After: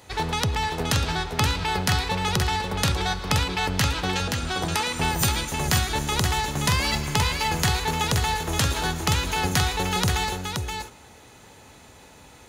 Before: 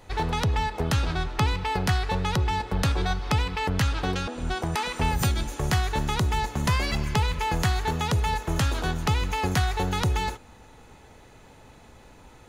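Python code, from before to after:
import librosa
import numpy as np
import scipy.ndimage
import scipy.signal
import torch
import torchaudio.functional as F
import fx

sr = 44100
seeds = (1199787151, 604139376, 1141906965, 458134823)

y = scipy.signal.sosfilt(scipy.signal.butter(2, 64.0, 'highpass', fs=sr, output='sos'), x)
y = fx.high_shelf(y, sr, hz=2800.0, db=8.5)
y = fx.echo_multitap(y, sr, ms=(113, 525), db=(-17.0, -5.0))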